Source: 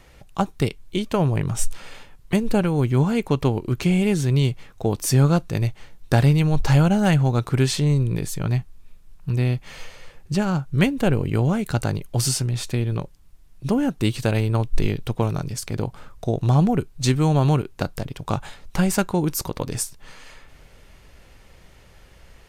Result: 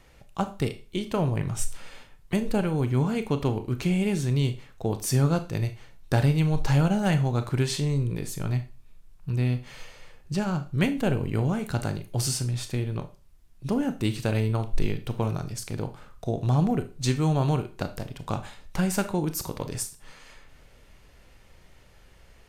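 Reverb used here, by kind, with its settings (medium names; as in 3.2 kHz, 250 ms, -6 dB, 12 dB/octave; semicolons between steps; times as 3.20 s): Schroeder reverb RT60 0.33 s, combs from 25 ms, DRR 9 dB; trim -5.5 dB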